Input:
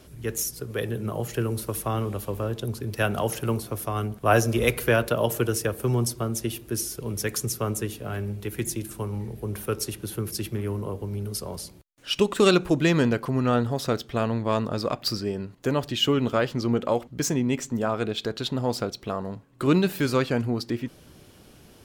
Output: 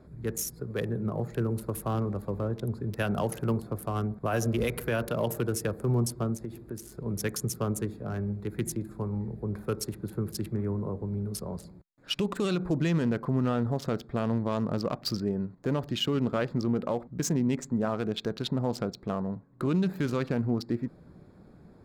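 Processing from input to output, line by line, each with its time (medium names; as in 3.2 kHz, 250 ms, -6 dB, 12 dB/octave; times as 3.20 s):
6.34–7.06 s: compression 5:1, threshold -30 dBFS
whole clip: local Wiener filter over 15 samples; peaking EQ 180 Hz +7 dB 0.6 oct; peak limiter -16 dBFS; trim -3 dB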